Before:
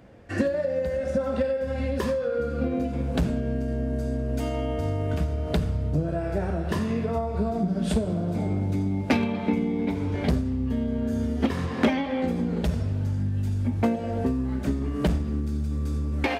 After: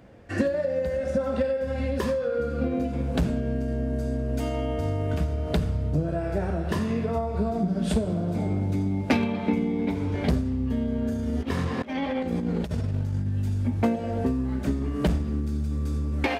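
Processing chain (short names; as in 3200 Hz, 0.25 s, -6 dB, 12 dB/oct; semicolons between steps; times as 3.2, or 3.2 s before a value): 11.08–13.27 negative-ratio compressor -27 dBFS, ratio -0.5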